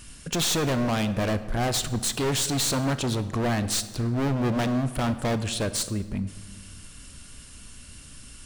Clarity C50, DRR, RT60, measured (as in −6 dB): 13.5 dB, 11.5 dB, 1.5 s